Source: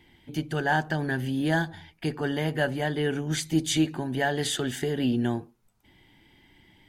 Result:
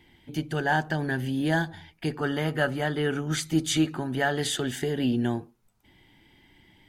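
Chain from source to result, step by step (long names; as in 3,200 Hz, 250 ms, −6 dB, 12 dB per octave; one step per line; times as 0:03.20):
0:02.21–0:04.40: parametric band 1,300 Hz +13 dB 0.21 octaves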